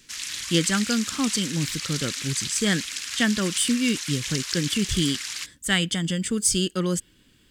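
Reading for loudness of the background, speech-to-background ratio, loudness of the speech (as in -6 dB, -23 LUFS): -29.5 LUFS, 4.5 dB, -25.0 LUFS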